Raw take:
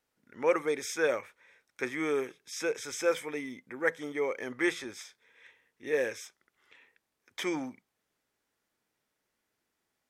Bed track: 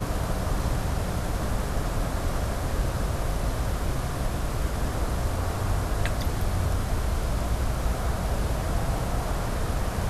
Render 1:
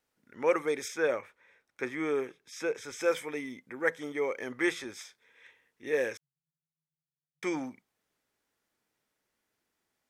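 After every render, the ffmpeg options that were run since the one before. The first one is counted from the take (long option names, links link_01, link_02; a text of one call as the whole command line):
ffmpeg -i in.wav -filter_complex "[0:a]asettb=1/sr,asplit=3[link_01][link_02][link_03];[link_01]atrim=end=0.884[link_04];[link_02]atrim=start=0.88:end=3.01,asetpts=PTS-STARTPTS,afade=type=in:duration=0.004:curve=qsin,afade=type=out:start_time=2.126:duration=0.004:curve=qsin,highshelf=frequency=3200:gain=-7.5[link_05];[link_03]atrim=start=3.006[link_06];[link_04][link_05]acrossfade=duration=0.004:curve1=hsin:curve2=qsin[link_07];[link_07][link_06]acrossfade=duration=0.004:curve1=qsin:curve2=hsin,asettb=1/sr,asplit=3[link_08][link_09][link_10];[link_08]atrim=end=6.174[link_11];[link_09]atrim=start=6.17:end=7.43,asetpts=PTS-STARTPTS,afade=type=in:duration=0.004:curve=qsin,afade=type=out:start_time=1.256:duration=0.004:curve=qsin,asuperpass=centerf=150:order=20:qfactor=4.6[link_12];[link_10]atrim=start=7.426[link_13];[link_11][link_12]acrossfade=duration=0.004:curve1=hsin:curve2=qsin[link_14];[link_14][link_13]acrossfade=duration=0.004:curve1=qsin:curve2=hsin" out.wav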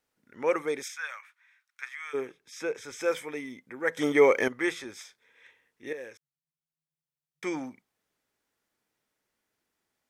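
ffmpeg -i in.wav -filter_complex "[0:a]asplit=3[link_01][link_02][link_03];[link_01]afade=type=out:start_time=0.82:duration=0.02[link_04];[link_02]highpass=frequency=1200:width=0.5412,highpass=frequency=1200:width=1.3066,afade=type=in:start_time=0.82:duration=0.02,afade=type=out:start_time=2.13:duration=0.02[link_05];[link_03]afade=type=in:start_time=2.13:duration=0.02[link_06];[link_04][link_05][link_06]amix=inputs=3:normalize=0,asplit=4[link_07][link_08][link_09][link_10];[link_07]atrim=end=3.972[link_11];[link_08]atrim=start=3.968:end=4.482,asetpts=PTS-STARTPTS,volume=12dB[link_12];[link_09]atrim=start=4.478:end=5.93,asetpts=PTS-STARTPTS,afade=type=out:start_time=1.448:duration=0.004:curve=hsin:silence=0.223872[link_13];[link_10]atrim=start=5.93,asetpts=PTS-STARTPTS,afade=type=in:duration=1.54:silence=0.223872[link_14];[link_11][link_12]acrossfade=duration=0.004:curve1=hsin:curve2=hsin[link_15];[link_13][link_14]concat=n=2:v=0:a=1[link_16];[link_15][link_16]acrossfade=duration=0.004:curve1=hsin:curve2=hsin" out.wav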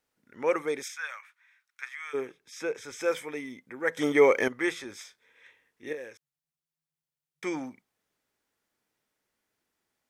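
ffmpeg -i in.wav -filter_complex "[0:a]asettb=1/sr,asplit=3[link_01][link_02][link_03];[link_01]atrim=end=4.894[link_04];[link_02]atrim=start=4.89:end=5.98,asetpts=PTS-STARTPTS,afade=type=in:duration=0.004:curve=qsin,afade=type=out:start_time=1.086:duration=0.004:curve=qsin,asplit=2[link_05][link_06];[link_06]adelay=20,volume=-10.5dB[link_07];[link_05][link_07]amix=inputs=2:normalize=0,atrim=end_sample=48069[link_08];[link_03]atrim=start=5.976[link_09];[link_04][link_08]acrossfade=duration=0.004:curve1=hsin:curve2=qsin[link_10];[link_10][link_09]acrossfade=duration=0.004:curve1=qsin:curve2=hsin" out.wav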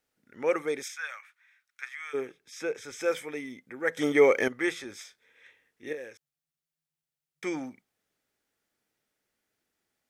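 ffmpeg -i in.wav -af "equalizer=frequency=1000:width=5.2:gain=-6.5" out.wav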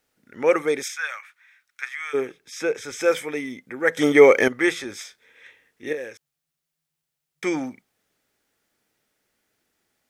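ffmpeg -i in.wav -af "volume=8dB" out.wav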